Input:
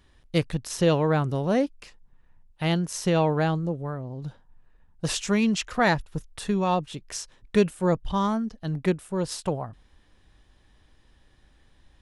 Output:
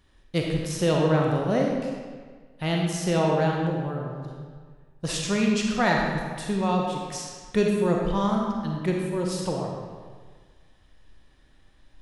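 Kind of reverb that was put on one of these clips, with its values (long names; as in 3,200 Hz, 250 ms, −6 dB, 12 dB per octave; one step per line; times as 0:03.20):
comb and all-pass reverb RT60 1.6 s, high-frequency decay 0.8×, pre-delay 5 ms, DRR −0.5 dB
level −2.5 dB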